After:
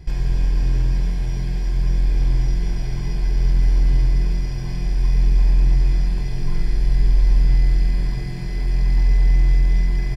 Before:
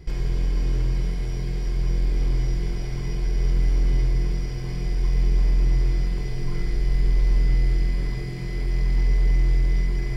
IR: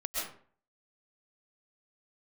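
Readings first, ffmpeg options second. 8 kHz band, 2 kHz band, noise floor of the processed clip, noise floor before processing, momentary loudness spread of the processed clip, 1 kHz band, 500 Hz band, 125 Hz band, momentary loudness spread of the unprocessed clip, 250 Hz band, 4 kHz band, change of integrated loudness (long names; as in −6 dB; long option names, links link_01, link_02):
can't be measured, +1.5 dB, −24 dBFS, −28 dBFS, 8 LU, +3.0 dB, −1.5 dB, +4.0 dB, 7 LU, +2.0 dB, +2.0 dB, +4.0 dB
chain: -filter_complex "[0:a]aecho=1:1:1.2:0.4,asplit=2[link_01][link_02];[1:a]atrim=start_sample=2205,asetrate=28224,aresample=44100[link_03];[link_02][link_03]afir=irnorm=-1:irlink=0,volume=-15dB[link_04];[link_01][link_04]amix=inputs=2:normalize=0"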